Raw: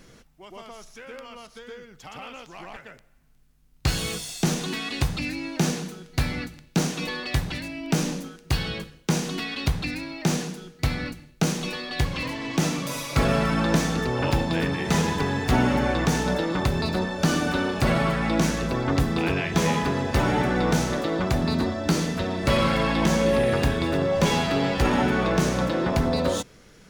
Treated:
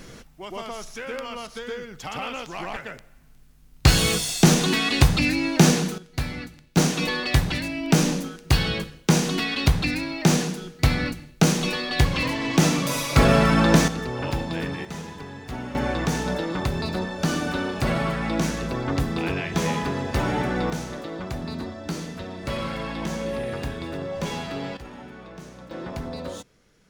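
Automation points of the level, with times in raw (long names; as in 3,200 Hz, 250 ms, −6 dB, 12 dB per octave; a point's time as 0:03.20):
+8 dB
from 0:05.98 −3 dB
from 0:06.77 +5 dB
from 0:13.88 −4 dB
from 0:14.85 −13 dB
from 0:15.75 −2 dB
from 0:20.70 −8 dB
from 0:24.77 −19.5 dB
from 0:25.71 −10 dB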